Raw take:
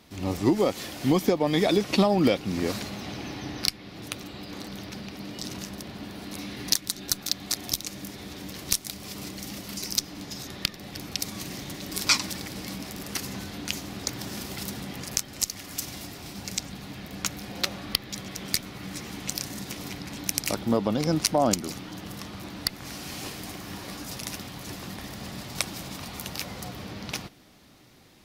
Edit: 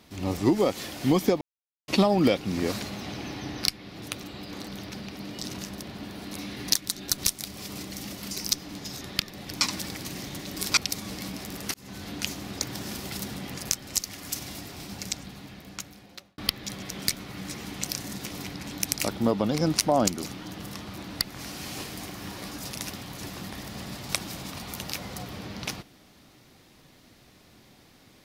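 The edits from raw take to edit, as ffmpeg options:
-filter_complex "[0:a]asplit=10[a][b][c][d][e][f][g][h][i][j];[a]atrim=end=1.41,asetpts=PTS-STARTPTS,afade=t=out:st=1.406:d=0.004:c=hsin[k];[b]atrim=start=1.41:end=1.88,asetpts=PTS-STARTPTS,volume=0[l];[c]atrim=start=1.88:end=7.182,asetpts=PTS-STARTPTS,afade=t=in:d=0.004:c=hsin[m];[d]atrim=start=8.638:end=11.072[n];[e]atrim=start=12.118:end=12.562[o];[f]atrim=start=11.398:end=12.122[p];[g]atrim=start=11.068:end=11.402[q];[h]atrim=start=12.558:end=13.2,asetpts=PTS-STARTPTS,afade=t=out:st=0.638:d=0.004:c=hsin[r];[i]atrim=start=13.2:end=17.84,asetpts=PTS-STARTPTS,afade=t=in:d=0.33,afade=t=out:st=3.15:d=1.49[s];[j]atrim=start=17.84,asetpts=PTS-STARTPTS,afade=t=in:d=0.004:c=hsin[t];[k][l][m]concat=n=3:v=0:a=1[u];[u][n]acrossfade=d=0.004:c1=hsin:c2=hsin[v];[v][o]acrossfade=d=0.004:c1=hsin:c2=hsin[w];[w][p]acrossfade=d=0.004:c1=hsin:c2=hsin[x];[x][q]acrossfade=d=0.004:c1=hsin:c2=hsin[y];[r][s][t]concat=n=3:v=0:a=1[z];[y][z]acrossfade=d=0.004:c1=hsin:c2=hsin"

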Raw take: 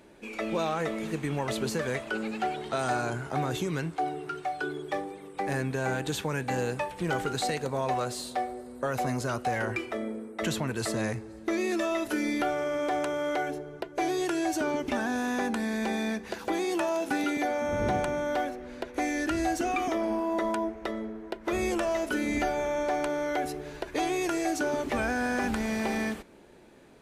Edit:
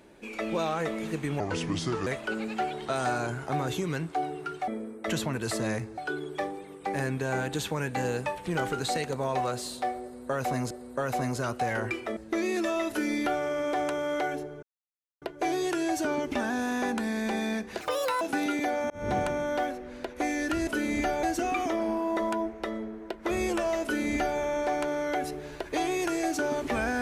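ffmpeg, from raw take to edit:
-filter_complex "[0:a]asplit=13[a][b][c][d][e][f][g][h][i][j][k][l][m];[a]atrim=end=1.404[n];[b]atrim=start=1.4:end=1.9,asetpts=PTS-STARTPTS,asetrate=33075,aresample=44100[o];[c]atrim=start=1.896:end=4.512[p];[d]atrim=start=10.018:end=11.322[q];[e]atrim=start=4.508:end=9.242[r];[f]atrim=start=8.558:end=10.022[s];[g]atrim=start=11.318:end=13.78,asetpts=PTS-STARTPTS,afade=t=out:st=2.458:d=0.004:c=hsin,apad=pad_dur=0.59[t];[h]atrim=start=13.78:end=16.374,asetpts=PTS-STARTPTS,afade=t=in:d=0.004:c=hsin[u];[i]atrim=start=16.37:end=16.99,asetpts=PTS-STARTPTS,asetrate=67473,aresample=44100[v];[j]atrim=start=16.986:end=17.68,asetpts=PTS-STARTPTS,afade=t=out:st=0.69:d=0.004:c=hsin[w];[k]atrim=start=17.68:end=19.452,asetpts=PTS-STARTPTS,afade=t=in:d=0.25[x];[l]atrim=start=22.048:end=22.612[y];[m]atrim=start=19.448[z];[n][o]acrossfade=d=0.004:c1=hsin:c2=hsin[aa];[aa][p]acrossfade=d=0.004:c1=hsin:c2=hsin[ab];[ab][q]acrossfade=d=0.004:c1=hsin:c2=hsin[ac];[ac][r]acrossfade=d=0.004:c1=hsin:c2=hsin[ad];[ad][s]acrossfade=d=0.004:c1=hsin:c2=hsin[ae];[t][u]concat=n=2:v=0:a=1[af];[ae][af]acrossfade=d=0.004:c1=hsin:c2=hsin[ag];[ag][v]acrossfade=d=0.004:c1=hsin:c2=hsin[ah];[w][x]concat=n=2:v=0:a=1[ai];[ah][ai]acrossfade=d=0.004:c1=hsin:c2=hsin[aj];[aj][y]acrossfade=d=0.004:c1=hsin:c2=hsin[ak];[ak][z]acrossfade=d=0.004:c1=hsin:c2=hsin"

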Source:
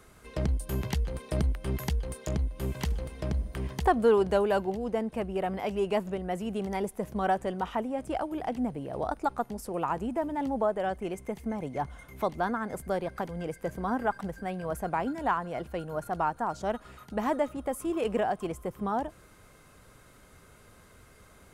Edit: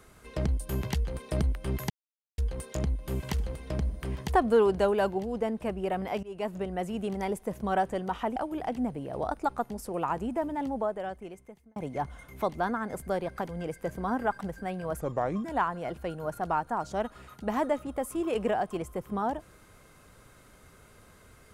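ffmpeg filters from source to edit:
-filter_complex "[0:a]asplit=7[a][b][c][d][e][f][g];[a]atrim=end=1.9,asetpts=PTS-STARTPTS,afade=t=out:st=1.896:d=0.004:c=hsin,apad=pad_dur=0.48[h];[b]atrim=start=1.9:end=5.75,asetpts=PTS-STARTPTS,afade=t=in:d=0.004:c=hsin,afade=t=out:st=3.846:d=0.004:c=hsin:silence=0.0794328[i];[c]atrim=start=5.75:end=7.882,asetpts=PTS-STARTPTS,afade=t=in:d=0.39:silence=0.0794328[j];[d]atrim=start=8.158:end=11.56,asetpts=PTS-STARTPTS,afade=t=out:st=2.112:d=1.29[k];[e]atrim=start=11.56:end=14.814,asetpts=PTS-STARTPTS,afade=t=in:d=0.004:c=hsin[l];[f]atrim=start=14.81:end=15.14,asetpts=PTS-STARTPTS,asetrate=33516,aresample=44100[m];[g]atrim=start=15.136[n];[h][i][j]concat=n=3:v=0:a=1[o];[k][l]concat=n=2:v=0:a=1[p];[o][p]acrossfade=d=0.004:c1=hsin:c2=hsin[q];[q][m]acrossfade=d=0.004:c1=hsin:c2=hsin[r];[r][n]acrossfade=d=0.004:c1=hsin:c2=hsin"

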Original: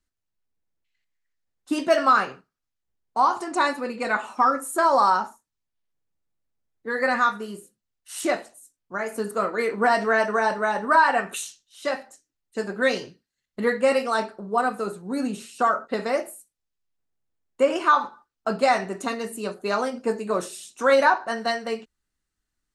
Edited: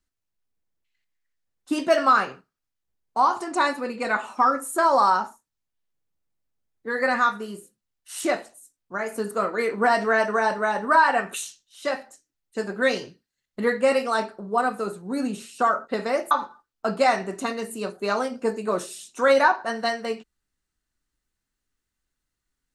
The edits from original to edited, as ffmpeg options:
-filter_complex "[0:a]asplit=2[a][b];[a]atrim=end=16.312[c];[b]atrim=start=17.928[d];[c][d]acrossfade=d=0.004:c1=hsin:c2=hsin"

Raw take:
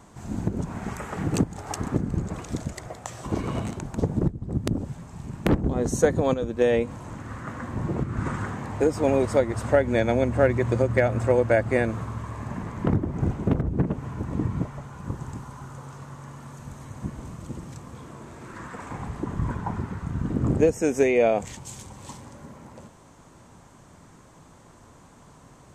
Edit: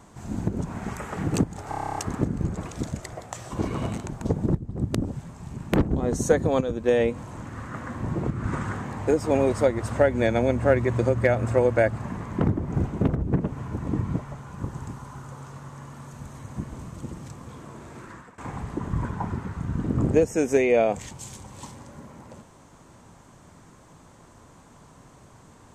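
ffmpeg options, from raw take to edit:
-filter_complex "[0:a]asplit=12[a][b][c][d][e][f][g][h][i][j][k][l];[a]atrim=end=1.722[m];[b]atrim=start=1.688:end=1.722[n];[c]atrim=start=1.688:end=1.722[o];[d]atrim=start=1.688:end=1.722[p];[e]atrim=start=1.688:end=1.722[q];[f]atrim=start=1.688:end=1.722[r];[g]atrim=start=1.688:end=1.722[s];[h]atrim=start=1.688:end=1.722[t];[i]atrim=start=1.688:end=1.722[u];[j]atrim=start=1.688:end=11.712[v];[k]atrim=start=12.438:end=18.84,asetpts=PTS-STARTPTS,afade=t=out:st=6.002:d=0.4:silence=0.0841395[w];[l]atrim=start=18.84,asetpts=PTS-STARTPTS,afade=t=in:d=0.004:c=hsin:silence=0.0841395[x];[m][n]acrossfade=d=0.004:c1=hsin:c2=hsin[y];[y][o]acrossfade=d=0.004:c1=hsin:c2=hsin[z];[z][p]acrossfade=d=0.004:c1=hsin:c2=hsin[aa];[aa][q]acrossfade=d=0.004:c1=hsin:c2=hsin[ab];[ab][r]acrossfade=d=0.004:c1=hsin:c2=hsin[ac];[ac][s]acrossfade=d=0.004:c1=hsin:c2=hsin[ad];[ad][t]acrossfade=d=0.004:c1=hsin:c2=hsin[ae];[ae][u]acrossfade=d=0.004:c1=hsin:c2=hsin[af];[af][v]acrossfade=d=0.004:c1=hsin:c2=hsin[ag];[w][x]concat=n=2:v=0:a=1[ah];[ag][ah]acrossfade=d=0.004:c1=hsin:c2=hsin"

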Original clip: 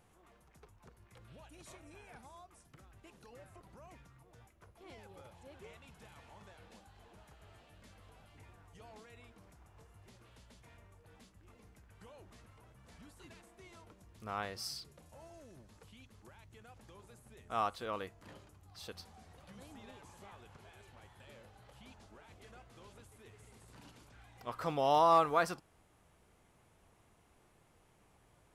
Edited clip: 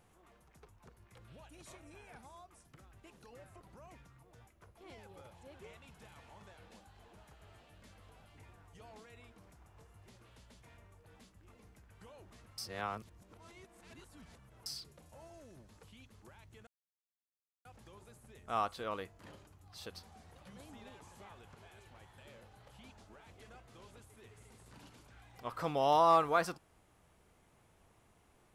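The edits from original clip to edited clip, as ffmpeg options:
-filter_complex "[0:a]asplit=4[a][b][c][d];[a]atrim=end=12.582[e];[b]atrim=start=12.578:end=14.662,asetpts=PTS-STARTPTS,areverse[f];[c]atrim=start=14.658:end=16.67,asetpts=PTS-STARTPTS,afade=t=out:st=2.008:d=0.004:c=hsin,apad=pad_dur=0.98[g];[d]atrim=start=16.67,asetpts=PTS-STARTPTS,afade=t=in:d=0.004:c=hsin[h];[e][f]acrossfade=d=0.004:c1=hsin:c2=hsin[i];[g][h]concat=n=2:v=0:a=1[j];[i][j]acrossfade=d=0.004:c1=hsin:c2=hsin"

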